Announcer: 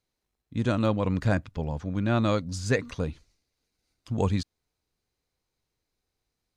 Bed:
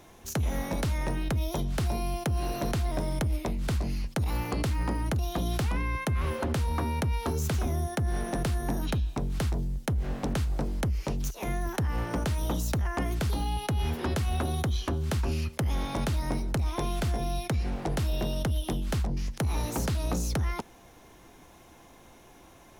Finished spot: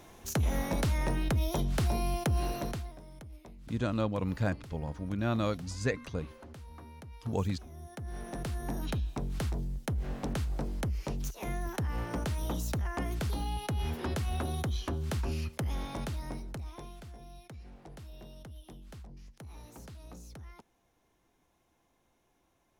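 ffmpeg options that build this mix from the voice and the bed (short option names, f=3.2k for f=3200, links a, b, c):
-filter_complex "[0:a]adelay=3150,volume=-6dB[a];[1:a]volume=15dB,afade=t=out:st=2.37:d=0.58:silence=0.105925,afade=t=in:st=7.7:d=1.21:silence=0.16788,afade=t=out:st=15.5:d=1.52:silence=0.177828[b];[a][b]amix=inputs=2:normalize=0"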